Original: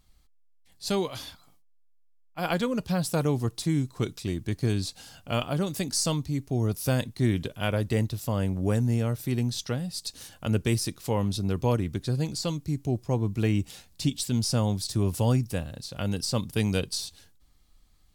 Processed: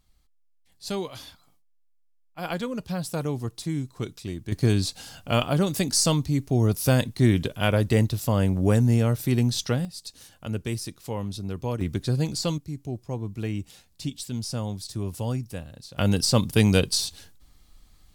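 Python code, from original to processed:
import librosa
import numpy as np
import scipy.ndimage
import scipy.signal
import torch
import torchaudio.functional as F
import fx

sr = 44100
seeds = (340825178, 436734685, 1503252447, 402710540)

y = fx.gain(x, sr, db=fx.steps((0.0, -3.0), (4.52, 5.0), (9.85, -4.5), (11.81, 3.0), (12.58, -5.0), (15.98, 7.0)))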